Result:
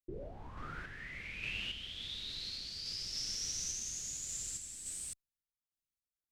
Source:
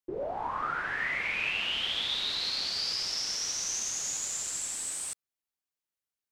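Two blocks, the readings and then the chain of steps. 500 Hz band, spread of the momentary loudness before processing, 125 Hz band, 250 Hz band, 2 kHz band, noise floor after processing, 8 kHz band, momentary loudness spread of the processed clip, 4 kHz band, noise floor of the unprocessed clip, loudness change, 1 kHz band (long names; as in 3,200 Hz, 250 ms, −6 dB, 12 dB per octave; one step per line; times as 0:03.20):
−12.5 dB, 5 LU, +1.5 dB, −6.0 dB, −13.0 dB, below −85 dBFS, −7.5 dB, 10 LU, −10.0 dB, below −85 dBFS, −9.5 dB, −18.0 dB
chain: guitar amp tone stack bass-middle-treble 10-0-1
sample-and-hold tremolo
level +15.5 dB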